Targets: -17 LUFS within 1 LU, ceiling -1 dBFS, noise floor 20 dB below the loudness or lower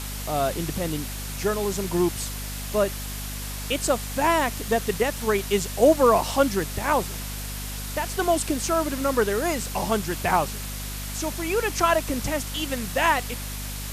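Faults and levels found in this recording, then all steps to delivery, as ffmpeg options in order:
hum 50 Hz; harmonics up to 250 Hz; hum level -32 dBFS; noise floor -33 dBFS; noise floor target -45 dBFS; loudness -25.0 LUFS; peak -6.5 dBFS; loudness target -17.0 LUFS
-> -af "bandreject=f=50:t=h:w=4,bandreject=f=100:t=h:w=4,bandreject=f=150:t=h:w=4,bandreject=f=200:t=h:w=4,bandreject=f=250:t=h:w=4"
-af "afftdn=nr=12:nf=-33"
-af "volume=8dB,alimiter=limit=-1dB:level=0:latency=1"

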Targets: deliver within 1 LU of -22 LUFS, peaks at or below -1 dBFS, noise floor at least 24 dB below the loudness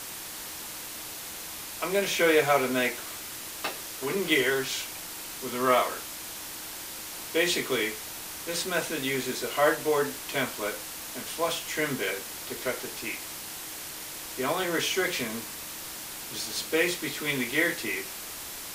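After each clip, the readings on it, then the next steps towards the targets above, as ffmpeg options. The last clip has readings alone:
noise floor -40 dBFS; noise floor target -53 dBFS; loudness -29.0 LUFS; peak -8.5 dBFS; loudness target -22.0 LUFS
-> -af "afftdn=nr=13:nf=-40"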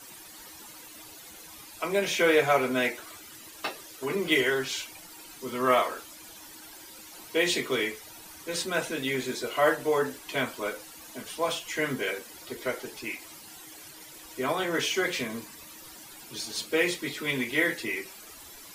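noise floor -48 dBFS; noise floor target -53 dBFS
-> -af "afftdn=nr=6:nf=-48"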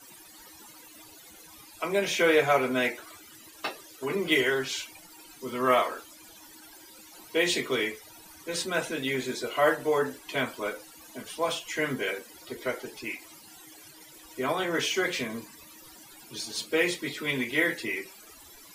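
noise floor -51 dBFS; noise floor target -53 dBFS
-> -af "afftdn=nr=6:nf=-51"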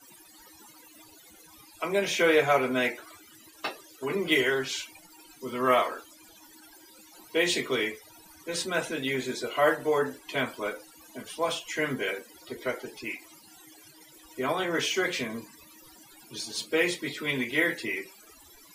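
noise floor -54 dBFS; loudness -28.5 LUFS; peak -8.5 dBFS; loudness target -22.0 LUFS
-> -af "volume=6.5dB"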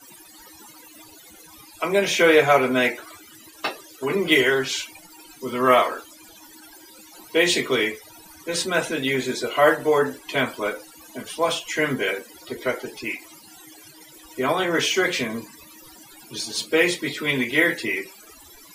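loudness -22.0 LUFS; peak -2.0 dBFS; noise floor -48 dBFS

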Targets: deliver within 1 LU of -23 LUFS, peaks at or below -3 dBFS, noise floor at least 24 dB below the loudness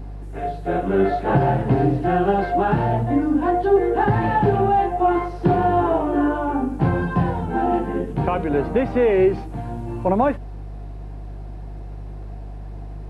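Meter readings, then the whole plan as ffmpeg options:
hum 50 Hz; harmonics up to 150 Hz; hum level -30 dBFS; loudness -20.5 LUFS; peak -5.0 dBFS; loudness target -23.0 LUFS
-> -af "bandreject=f=50:t=h:w=4,bandreject=f=100:t=h:w=4,bandreject=f=150:t=h:w=4"
-af "volume=-2.5dB"

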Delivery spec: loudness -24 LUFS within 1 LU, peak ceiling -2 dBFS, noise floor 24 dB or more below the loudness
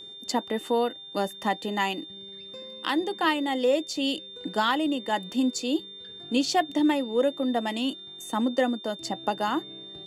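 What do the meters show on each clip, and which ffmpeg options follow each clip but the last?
steady tone 3600 Hz; tone level -41 dBFS; loudness -27.5 LUFS; peak -12.0 dBFS; loudness target -24.0 LUFS
-> -af "bandreject=f=3.6k:w=30"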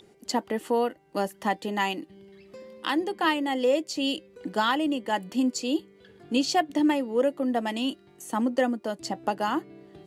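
steady tone none; loudness -27.5 LUFS; peak -12.5 dBFS; loudness target -24.0 LUFS
-> -af "volume=3.5dB"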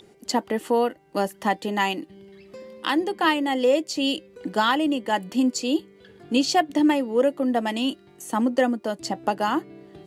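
loudness -24.0 LUFS; peak -9.0 dBFS; noise floor -53 dBFS

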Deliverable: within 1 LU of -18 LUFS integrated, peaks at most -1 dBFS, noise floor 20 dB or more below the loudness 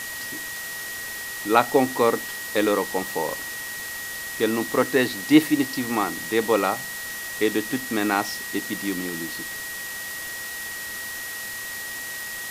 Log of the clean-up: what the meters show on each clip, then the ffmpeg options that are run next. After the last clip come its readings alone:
steady tone 1900 Hz; tone level -33 dBFS; noise floor -33 dBFS; noise floor target -45 dBFS; loudness -25.0 LUFS; peak -1.5 dBFS; loudness target -18.0 LUFS
-> -af "bandreject=f=1.9k:w=30"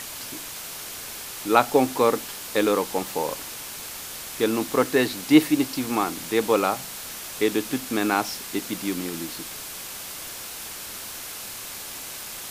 steady tone none; noise floor -37 dBFS; noise floor target -46 dBFS
-> -af "afftdn=nr=9:nf=-37"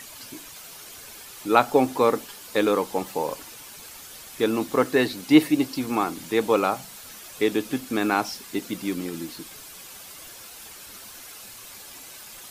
noise floor -43 dBFS; noise floor target -44 dBFS
-> -af "afftdn=nr=6:nf=-43"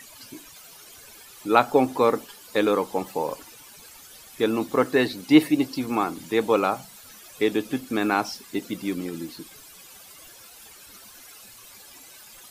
noise floor -48 dBFS; loudness -24.0 LUFS; peak -2.0 dBFS; loudness target -18.0 LUFS
-> -af "volume=6dB,alimiter=limit=-1dB:level=0:latency=1"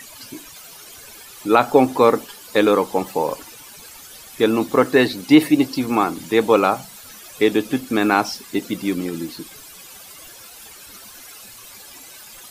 loudness -18.5 LUFS; peak -1.0 dBFS; noise floor -42 dBFS

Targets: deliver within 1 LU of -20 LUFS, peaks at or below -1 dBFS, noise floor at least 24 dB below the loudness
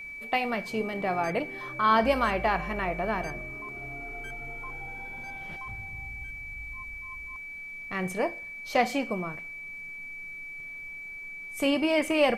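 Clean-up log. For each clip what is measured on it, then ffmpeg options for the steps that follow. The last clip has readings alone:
steady tone 2300 Hz; tone level -38 dBFS; loudness -30.5 LUFS; peak -10.5 dBFS; loudness target -20.0 LUFS
-> -af "bandreject=f=2.3k:w=30"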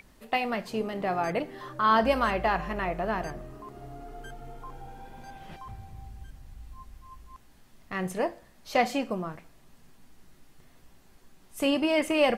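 steady tone none; loudness -28.5 LUFS; peak -10.5 dBFS; loudness target -20.0 LUFS
-> -af "volume=8.5dB"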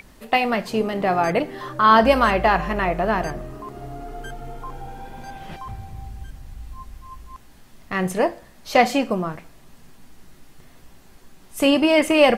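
loudness -20.0 LUFS; peak -2.0 dBFS; noise floor -49 dBFS

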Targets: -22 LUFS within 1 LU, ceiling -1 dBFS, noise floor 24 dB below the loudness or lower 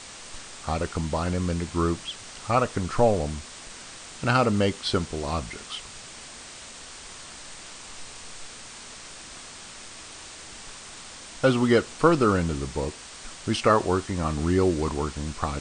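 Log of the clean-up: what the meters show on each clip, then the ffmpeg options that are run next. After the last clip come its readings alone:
noise floor -43 dBFS; noise floor target -50 dBFS; loudness -25.5 LUFS; peak -6.0 dBFS; loudness target -22.0 LUFS
-> -af "afftdn=nr=7:nf=-43"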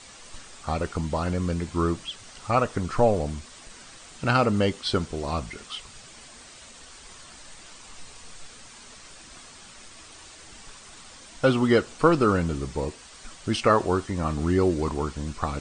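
noise floor -47 dBFS; noise floor target -50 dBFS
-> -af "afftdn=nr=6:nf=-47"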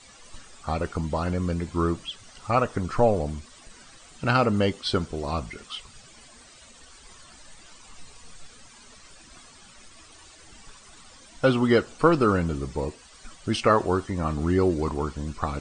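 noise floor -51 dBFS; loudness -25.5 LUFS; peak -6.0 dBFS; loudness target -22.0 LUFS
-> -af "volume=3.5dB"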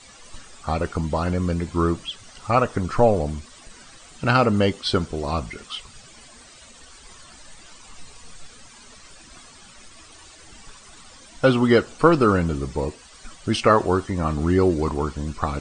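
loudness -22.0 LUFS; peak -2.5 dBFS; noise floor -47 dBFS

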